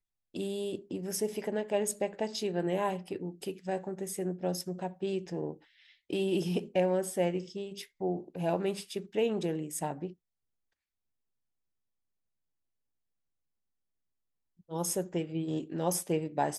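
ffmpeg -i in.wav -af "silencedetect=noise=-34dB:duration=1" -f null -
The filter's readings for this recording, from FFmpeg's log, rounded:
silence_start: 10.07
silence_end: 14.72 | silence_duration: 4.65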